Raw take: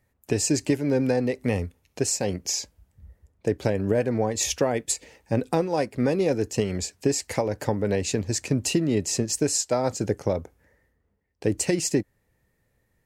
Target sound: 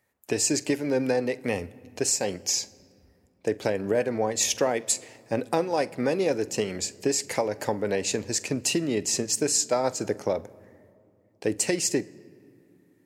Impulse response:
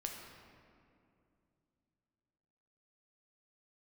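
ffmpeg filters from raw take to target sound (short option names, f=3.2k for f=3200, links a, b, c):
-filter_complex "[0:a]highpass=f=420:p=1,asplit=2[a][b];[1:a]atrim=start_sample=2205,lowshelf=f=150:g=9.5,adelay=46[c];[b][c]afir=irnorm=-1:irlink=0,volume=-17.5dB[d];[a][d]amix=inputs=2:normalize=0,volume=1.5dB"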